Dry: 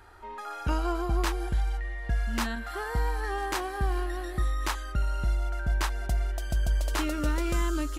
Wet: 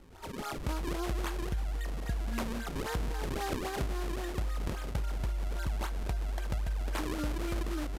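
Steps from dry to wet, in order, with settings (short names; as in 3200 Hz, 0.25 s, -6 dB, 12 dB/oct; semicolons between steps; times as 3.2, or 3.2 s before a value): decimation with a swept rate 37×, swing 160% 3.7 Hz; compressor, threshold -30 dBFS, peak gain reduction 8.5 dB; downsampling 32000 Hz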